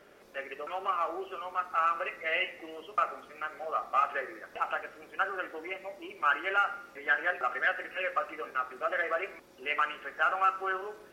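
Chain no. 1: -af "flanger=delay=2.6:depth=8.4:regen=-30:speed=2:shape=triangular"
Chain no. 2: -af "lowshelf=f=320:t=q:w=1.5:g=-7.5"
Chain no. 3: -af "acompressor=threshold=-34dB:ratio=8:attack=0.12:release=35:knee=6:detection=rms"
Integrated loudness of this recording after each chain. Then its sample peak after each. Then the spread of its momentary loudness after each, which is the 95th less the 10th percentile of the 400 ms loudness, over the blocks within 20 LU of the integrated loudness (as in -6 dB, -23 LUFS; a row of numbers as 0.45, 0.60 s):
-35.5, -31.5, -41.0 LUFS; -16.5, -14.0, -31.5 dBFS; 11, 11, 5 LU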